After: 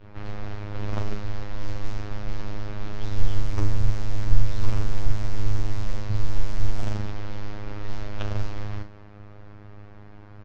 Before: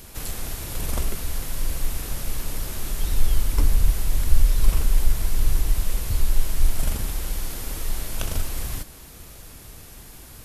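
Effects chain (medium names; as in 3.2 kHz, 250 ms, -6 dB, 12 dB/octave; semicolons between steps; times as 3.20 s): gate with hold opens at -34 dBFS; level-controlled noise filter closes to 1.9 kHz, open at -12 dBFS; treble shelf 5.9 kHz +11 dB; robot voice 103 Hz; distance through air 240 m; doubling 39 ms -8 dB; resampled via 22.05 kHz; loudspeaker Doppler distortion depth 0.48 ms; trim +1.5 dB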